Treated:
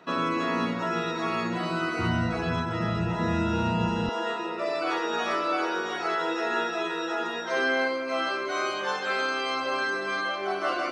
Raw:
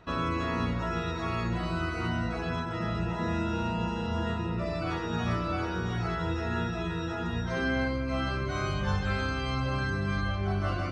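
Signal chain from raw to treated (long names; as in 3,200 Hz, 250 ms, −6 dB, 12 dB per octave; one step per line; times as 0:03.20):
high-pass filter 190 Hz 24 dB per octave, from 0:01.99 79 Hz, from 0:04.09 350 Hz
speech leveller 2 s
level +5.5 dB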